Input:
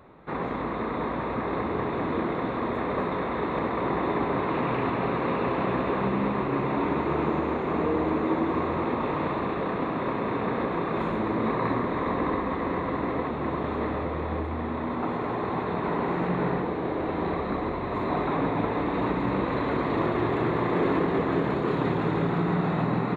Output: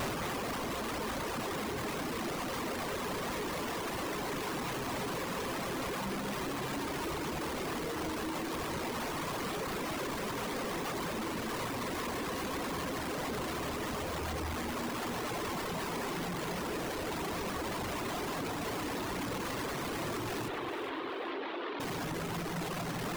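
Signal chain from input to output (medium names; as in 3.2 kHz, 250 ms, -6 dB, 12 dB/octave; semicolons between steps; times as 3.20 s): one-bit comparator; reverb removal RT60 1.2 s; 20.48–21.80 s: elliptic band-pass 300–3600 Hz; on a send: echo whose repeats swap between lows and highs 205 ms, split 2.4 kHz, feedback 54%, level -7 dB; on the sum: trim -7 dB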